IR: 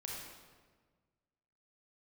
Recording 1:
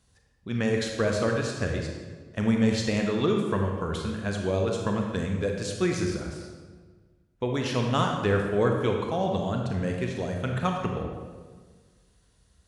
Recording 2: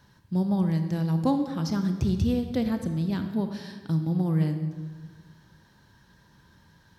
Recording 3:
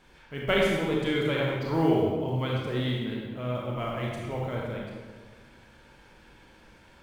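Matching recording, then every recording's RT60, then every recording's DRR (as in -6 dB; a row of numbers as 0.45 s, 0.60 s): 3; 1.5 s, 1.5 s, 1.5 s; 1.5 dB, 7.0 dB, -3.0 dB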